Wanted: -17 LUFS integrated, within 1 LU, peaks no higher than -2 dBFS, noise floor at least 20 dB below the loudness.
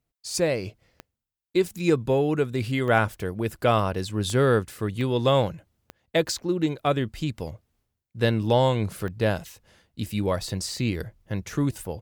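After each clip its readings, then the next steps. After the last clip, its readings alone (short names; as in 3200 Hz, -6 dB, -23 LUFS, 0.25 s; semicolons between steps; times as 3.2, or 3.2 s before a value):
clicks 6; loudness -25.5 LUFS; peak -8.0 dBFS; loudness target -17.0 LUFS
-> de-click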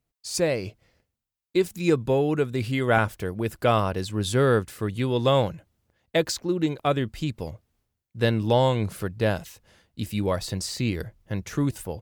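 clicks 0; loudness -25.5 LUFS; peak -8.5 dBFS; loudness target -17.0 LUFS
-> gain +8.5 dB; limiter -2 dBFS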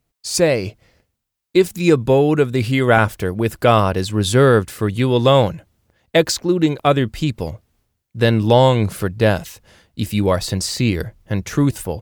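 loudness -17.0 LUFS; peak -2.0 dBFS; noise floor -76 dBFS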